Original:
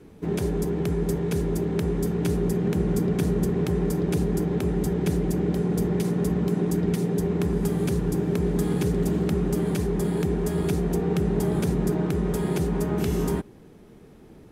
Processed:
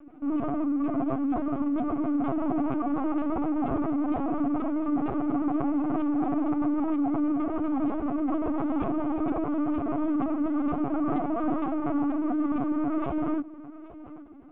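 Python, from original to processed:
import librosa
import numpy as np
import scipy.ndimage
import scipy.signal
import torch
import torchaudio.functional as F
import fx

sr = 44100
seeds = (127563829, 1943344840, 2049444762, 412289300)

p1 = 10.0 ** (-23.0 / 20.0) * (np.abs((x / 10.0 ** (-23.0 / 20.0) + 3.0) % 4.0 - 2.0) - 1.0)
p2 = fx.pitch_keep_formants(p1, sr, semitones=8.5)
p3 = fx.cabinet(p2, sr, low_hz=240.0, low_slope=12, high_hz=2300.0, hz=(290.0, 460.0, 710.0, 1200.0, 1800.0), db=(6, -6, 6, 9, -8))
p4 = p3 + fx.echo_feedback(p3, sr, ms=819, feedback_pct=21, wet_db=-17.0, dry=0)
y = fx.lpc_vocoder(p4, sr, seeds[0], excitation='pitch_kept', order=16)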